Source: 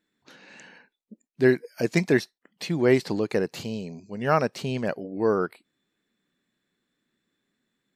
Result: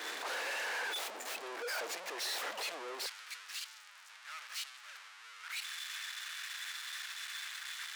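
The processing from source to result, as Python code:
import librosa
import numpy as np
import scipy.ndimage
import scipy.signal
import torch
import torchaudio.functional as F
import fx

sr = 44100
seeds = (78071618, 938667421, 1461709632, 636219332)

y = np.sign(x) * np.sqrt(np.mean(np.square(x)))
y = fx.lowpass(y, sr, hz=2000.0, slope=6)
y = fx.level_steps(y, sr, step_db=23)
y = fx.leveller(y, sr, passes=5)
y = fx.highpass(y, sr, hz=fx.steps((0.0, 480.0), (3.06, 1300.0)), slope=24)
y = fx.band_widen(y, sr, depth_pct=70)
y = F.gain(torch.from_numpy(y), -2.0).numpy()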